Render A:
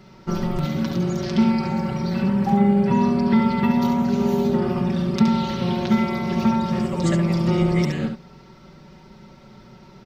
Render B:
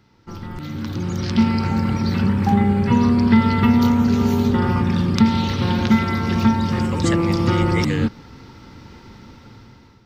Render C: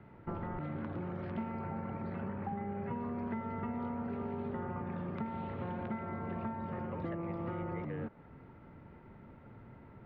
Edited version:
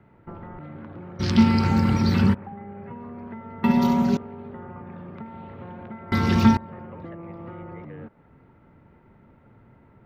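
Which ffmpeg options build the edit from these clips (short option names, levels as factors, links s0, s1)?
-filter_complex "[1:a]asplit=2[s0][s1];[2:a]asplit=4[s2][s3][s4][s5];[s2]atrim=end=1.21[s6];[s0]atrim=start=1.19:end=2.35[s7];[s3]atrim=start=2.33:end=3.642[s8];[0:a]atrim=start=3.638:end=4.172[s9];[s4]atrim=start=4.168:end=6.122[s10];[s1]atrim=start=6.118:end=6.572[s11];[s5]atrim=start=6.568[s12];[s6][s7]acrossfade=d=0.02:c1=tri:c2=tri[s13];[s13][s8]acrossfade=d=0.02:c1=tri:c2=tri[s14];[s14][s9]acrossfade=d=0.004:c1=hsin:c2=hsin[s15];[s15][s10]acrossfade=d=0.004:c1=hsin:c2=hsin[s16];[s16][s11]acrossfade=d=0.004:c1=hsin:c2=hsin[s17];[s17][s12]acrossfade=d=0.004:c1=hsin:c2=hsin"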